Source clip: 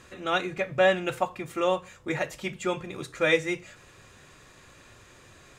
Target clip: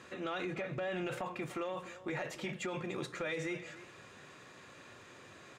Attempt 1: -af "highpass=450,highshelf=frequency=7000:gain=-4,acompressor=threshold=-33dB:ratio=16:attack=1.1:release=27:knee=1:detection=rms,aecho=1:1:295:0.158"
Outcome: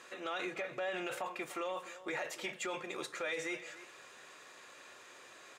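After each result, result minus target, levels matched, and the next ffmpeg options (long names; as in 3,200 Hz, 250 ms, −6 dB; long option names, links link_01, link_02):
125 Hz band −14.0 dB; 8,000 Hz band +4.5 dB
-af "highpass=150,highshelf=frequency=7000:gain=-4,acompressor=threshold=-33dB:ratio=16:attack=1.1:release=27:knee=1:detection=rms,aecho=1:1:295:0.158"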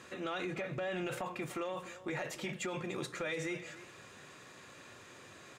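8,000 Hz band +4.0 dB
-af "highpass=150,highshelf=frequency=7000:gain=-12,acompressor=threshold=-33dB:ratio=16:attack=1.1:release=27:knee=1:detection=rms,aecho=1:1:295:0.158"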